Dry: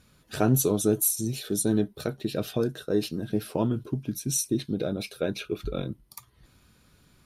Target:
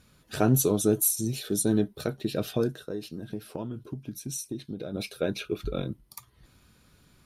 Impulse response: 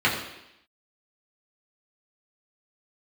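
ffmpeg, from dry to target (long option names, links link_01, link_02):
-filter_complex "[0:a]asplit=3[link_01][link_02][link_03];[link_01]afade=type=out:start_time=2.75:duration=0.02[link_04];[link_02]acompressor=threshold=-36dB:ratio=2.5,afade=type=in:start_time=2.75:duration=0.02,afade=type=out:start_time=4.93:duration=0.02[link_05];[link_03]afade=type=in:start_time=4.93:duration=0.02[link_06];[link_04][link_05][link_06]amix=inputs=3:normalize=0"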